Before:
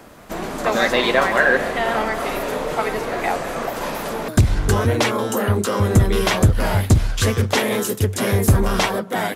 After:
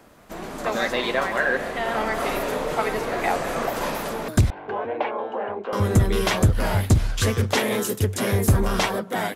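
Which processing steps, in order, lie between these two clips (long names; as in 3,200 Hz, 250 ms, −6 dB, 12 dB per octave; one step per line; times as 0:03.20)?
automatic gain control
0:04.50–0:05.73: loudspeaker in its box 500–2,200 Hz, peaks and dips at 770 Hz +5 dB, 1,300 Hz −10 dB, 1,900 Hz −8 dB
level −8 dB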